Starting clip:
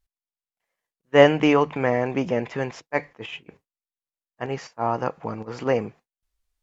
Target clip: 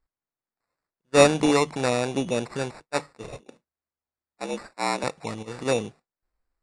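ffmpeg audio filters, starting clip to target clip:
-filter_complex "[0:a]asettb=1/sr,asplit=3[a][b][c];[a]atrim=end=3.244[d];[b]atrim=start=3.24:end=5.04,asetpts=PTS-STARTPTS,afade=t=in:d=0.004:c=qsin,afade=t=out:st=1.796:d=0.004:c=qsin,afreqshift=75[e];[c]atrim=start=5.036[f];[d][e]acrossfade=d=0.004:c1=hsin:c2=qsin[g];[g][f]acrossfade=d=0.004:c1=qsin:c2=hsin,acrusher=samples=14:mix=1:aa=0.000001,aresample=22050,aresample=44100,volume=-2dB"

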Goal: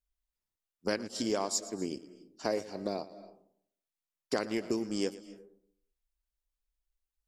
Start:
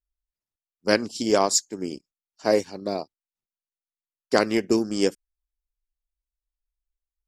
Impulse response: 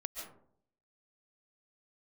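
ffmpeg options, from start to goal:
-filter_complex "[0:a]acompressor=threshold=-32dB:ratio=3,asplit=2[a][b];[1:a]atrim=start_sample=2205,adelay=115[c];[b][c]afir=irnorm=-1:irlink=0,volume=-13.5dB[d];[a][d]amix=inputs=2:normalize=0"

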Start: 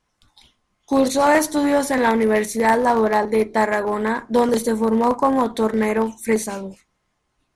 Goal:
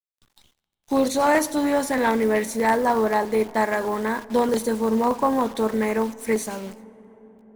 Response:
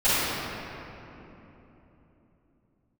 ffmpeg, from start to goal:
-filter_complex "[0:a]acrusher=bits=7:dc=4:mix=0:aa=0.000001,asplit=2[a][b];[1:a]atrim=start_sample=2205,asetrate=27783,aresample=44100[c];[b][c]afir=irnorm=-1:irlink=0,volume=-41.5dB[d];[a][d]amix=inputs=2:normalize=0,volume=-3.5dB"

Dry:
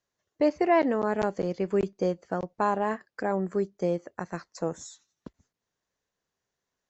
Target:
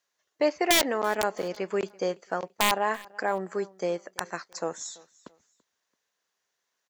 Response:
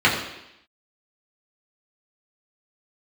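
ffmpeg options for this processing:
-af "highpass=f=1.2k:p=1,highshelf=f=5.6k:g=-2,aeval=exprs='(mod(10.6*val(0)+1,2)-1)/10.6':c=same,aecho=1:1:335|670:0.0668|0.0227,volume=7.5dB"

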